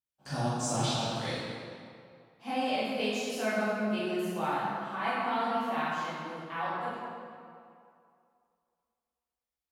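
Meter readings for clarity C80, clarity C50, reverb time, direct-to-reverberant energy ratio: -1.5 dB, -3.5 dB, 2.4 s, -11.5 dB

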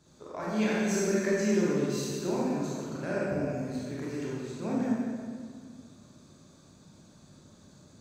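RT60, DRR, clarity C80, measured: 1.9 s, -6.5 dB, -0.5 dB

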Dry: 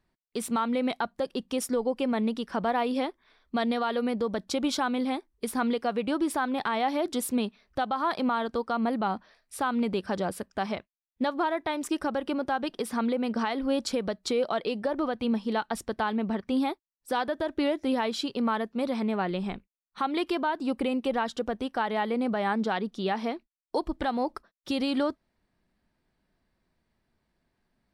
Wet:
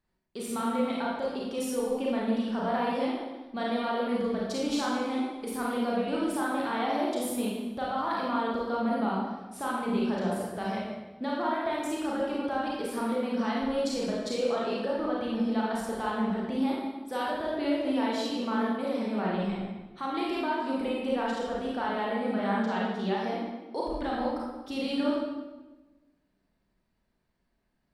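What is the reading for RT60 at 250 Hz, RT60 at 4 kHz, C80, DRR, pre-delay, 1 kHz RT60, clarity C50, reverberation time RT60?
1.4 s, 0.95 s, 2.0 dB, -5.5 dB, 29 ms, 1.1 s, -1.0 dB, 1.2 s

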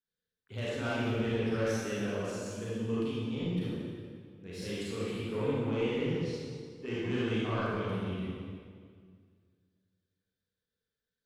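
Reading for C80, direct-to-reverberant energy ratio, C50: -1.5 dB, -8.5 dB, -4.5 dB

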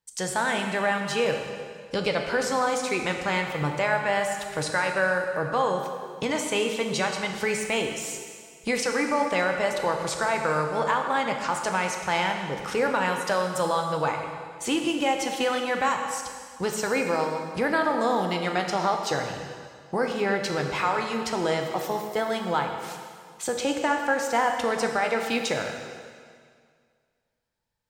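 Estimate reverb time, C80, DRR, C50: 2.0 s, 5.5 dB, 3.0 dB, 4.5 dB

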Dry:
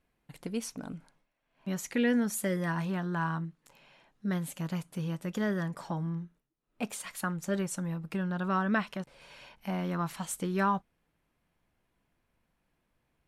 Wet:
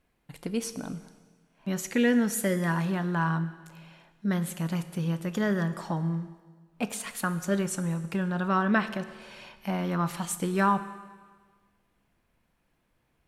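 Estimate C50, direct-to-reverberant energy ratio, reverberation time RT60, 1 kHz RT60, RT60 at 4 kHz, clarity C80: 13.5 dB, 12.0 dB, 1.5 s, 1.5 s, 1.5 s, 14.5 dB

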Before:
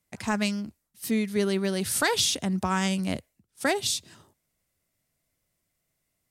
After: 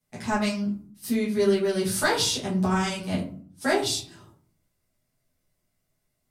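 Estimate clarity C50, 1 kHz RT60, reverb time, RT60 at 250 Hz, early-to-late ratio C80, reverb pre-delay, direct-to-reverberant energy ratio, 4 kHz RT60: 7.0 dB, 0.45 s, 0.50 s, 0.75 s, 12.0 dB, 8 ms, -9.0 dB, 0.25 s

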